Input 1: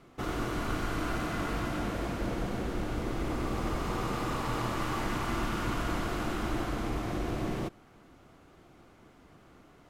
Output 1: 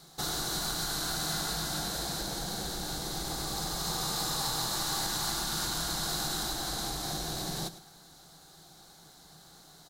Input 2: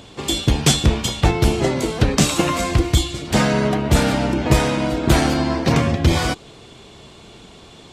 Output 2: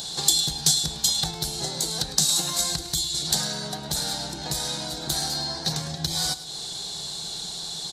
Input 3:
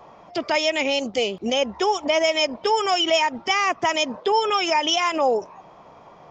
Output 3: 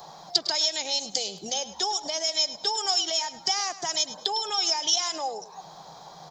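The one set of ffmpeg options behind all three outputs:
-af "acompressor=threshold=-31dB:ratio=5,equalizer=f=100:t=o:w=0.33:g=-11,equalizer=f=160:t=o:w=0.33:g=12,equalizer=f=250:t=o:w=0.33:g=-7,equalizer=f=800:t=o:w=0.33:g=11,equalizer=f=1.6k:t=o:w=0.33:g=8,equalizer=f=4k:t=o:w=0.33:g=11,aecho=1:1:105|210|315:0.178|0.0498|0.0139,aexciter=amount=10:drive=4.8:freq=3.8k,volume=-4.5dB"

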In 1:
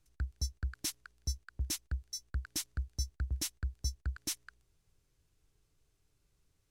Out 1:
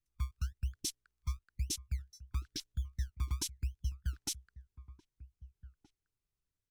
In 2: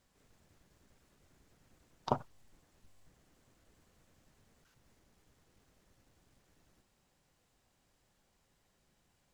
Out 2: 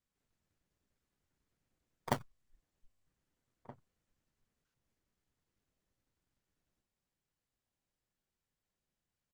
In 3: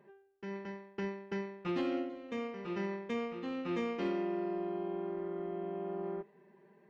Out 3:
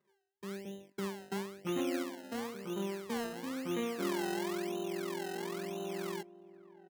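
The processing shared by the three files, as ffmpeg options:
-filter_complex "[0:a]afwtdn=0.00794,acrossover=split=800[a][b];[a]acrusher=samples=26:mix=1:aa=0.000001:lfo=1:lforange=26:lforate=0.99[c];[c][b]amix=inputs=2:normalize=0,asplit=2[d][e];[e]adelay=1574,volume=-17dB,highshelf=f=4k:g=-35.4[f];[d][f]amix=inputs=2:normalize=0"

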